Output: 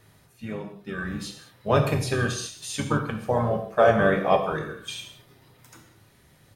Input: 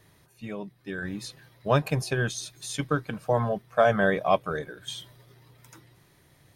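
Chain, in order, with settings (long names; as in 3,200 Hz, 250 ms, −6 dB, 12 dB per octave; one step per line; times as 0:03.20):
pitch-shifted copies added −5 semitones −8 dB
reverb whose tail is shaped and stops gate 240 ms falling, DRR 3 dB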